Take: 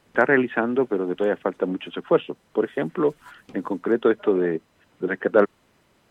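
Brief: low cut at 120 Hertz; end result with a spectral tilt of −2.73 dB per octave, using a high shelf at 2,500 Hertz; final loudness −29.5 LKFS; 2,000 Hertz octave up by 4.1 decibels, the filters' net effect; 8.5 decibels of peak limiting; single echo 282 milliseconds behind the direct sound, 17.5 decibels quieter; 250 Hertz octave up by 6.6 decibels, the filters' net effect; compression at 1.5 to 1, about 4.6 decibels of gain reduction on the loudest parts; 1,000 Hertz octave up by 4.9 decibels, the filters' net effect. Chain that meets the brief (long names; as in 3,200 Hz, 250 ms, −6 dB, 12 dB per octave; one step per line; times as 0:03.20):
high-pass filter 120 Hz
parametric band 250 Hz +8.5 dB
parametric band 1,000 Hz +6 dB
parametric band 2,000 Hz +6 dB
high-shelf EQ 2,500 Hz −8 dB
downward compressor 1.5 to 1, threshold −21 dBFS
brickwall limiter −13 dBFS
single-tap delay 282 ms −17.5 dB
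level −4.5 dB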